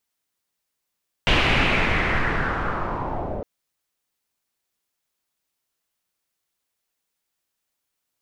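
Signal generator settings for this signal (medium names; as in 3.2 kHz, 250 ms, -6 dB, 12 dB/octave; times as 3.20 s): swept filtered noise pink, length 2.16 s lowpass, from 2.9 kHz, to 530 Hz, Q 2.9, linear, gain ramp -11 dB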